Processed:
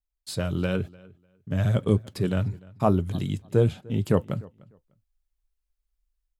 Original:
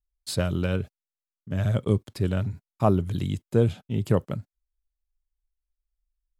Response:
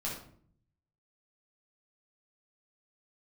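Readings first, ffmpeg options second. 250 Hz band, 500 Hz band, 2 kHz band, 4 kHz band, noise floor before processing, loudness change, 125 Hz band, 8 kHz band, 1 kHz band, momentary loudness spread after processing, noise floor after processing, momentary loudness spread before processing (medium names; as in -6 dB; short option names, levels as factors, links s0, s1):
+0.5 dB, +0.5 dB, +0.5 dB, -1.0 dB, under -85 dBFS, +0.5 dB, 0.0 dB, no reading, +0.5 dB, 9 LU, -81 dBFS, 10 LU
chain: -filter_complex "[0:a]dynaudnorm=f=390:g=3:m=2.37,flanger=delay=3.3:depth=3.8:regen=-71:speed=1:shape=triangular,asplit=2[s0][s1];[s1]adelay=299,lowpass=f=4200:p=1,volume=0.0708,asplit=2[s2][s3];[s3]adelay=299,lowpass=f=4200:p=1,volume=0.2[s4];[s0][s2][s4]amix=inputs=3:normalize=0"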